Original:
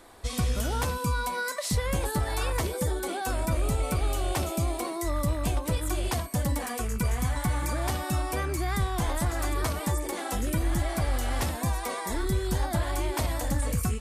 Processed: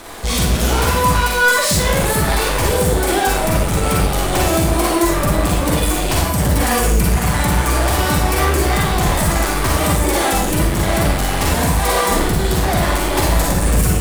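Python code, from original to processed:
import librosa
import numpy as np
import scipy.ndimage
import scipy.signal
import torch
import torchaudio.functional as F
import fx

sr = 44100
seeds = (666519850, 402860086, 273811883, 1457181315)

y = fx.leveller(x, sr, passes=5)
y = fx.rev_schroeder(y, sr, rt60_s=0.56, comb_ms=38, drr_db=-2.0)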